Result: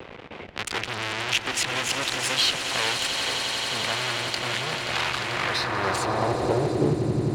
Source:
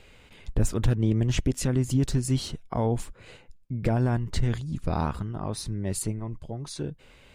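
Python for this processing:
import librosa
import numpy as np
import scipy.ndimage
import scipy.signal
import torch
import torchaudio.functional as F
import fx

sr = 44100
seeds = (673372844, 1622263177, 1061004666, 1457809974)

y = fx.env_lowpass(x, sr, base_hz=390.0, full_db=-23.5)
y = fx.low_shelf(y, sr, hz=360.0, db=5.0)
y = fx.auto_swell(y, sr, attack_ms=123.0)
y = fx.fuzz(y, sr, gain_db=45.0, gate_db=-51.0)
y = fx.echo_swell(y, sr, ms=88, loudest=8, wet_db=-13)
y = fx.filter_sweep_bandpass(y, sr, from_hz=2800.0, to_hz=250.0, start_s=5.26, end_s=7.11, q=1.2)
y = fx.band_squash(y, sr, depth_pct=40)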